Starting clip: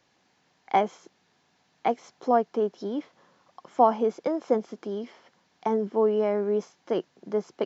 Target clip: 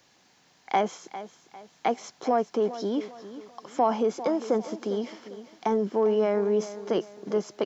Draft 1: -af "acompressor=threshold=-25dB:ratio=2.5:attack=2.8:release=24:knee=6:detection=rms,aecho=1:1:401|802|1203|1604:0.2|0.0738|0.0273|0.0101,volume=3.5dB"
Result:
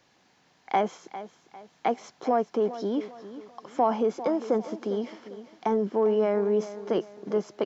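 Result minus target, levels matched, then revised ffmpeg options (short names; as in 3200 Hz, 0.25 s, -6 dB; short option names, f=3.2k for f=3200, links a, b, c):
8000 Hz band -6.0 dB
-af "acompressor=threshold=-25dB:ratio=2.5:attack=2.8:release=24:knee=6:detection=rms,highshelf=f=4.6k:g=9.5,aecho=1:1:401|802|1203|1604:0.2|0.0738|0.0273|0.0101,volume=3.5dB"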